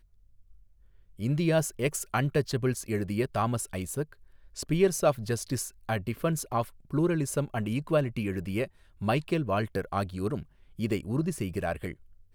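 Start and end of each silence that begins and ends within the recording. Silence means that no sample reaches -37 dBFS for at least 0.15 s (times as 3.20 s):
4.04–4.57 s
5.69–5.89 s
6.64–6.91 s
8.65–9.01 s
10.43–10.79 s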